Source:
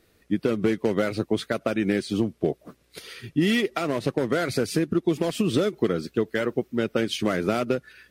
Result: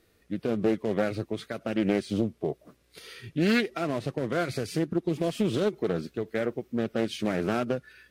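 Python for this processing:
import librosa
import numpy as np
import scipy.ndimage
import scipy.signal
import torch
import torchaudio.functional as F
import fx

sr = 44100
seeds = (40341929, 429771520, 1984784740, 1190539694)

y = fx.hpss(x, sr, part='percussive', gain_db=-9)
y = fx.doppler_dist(y, sr, depth_ms=0.32)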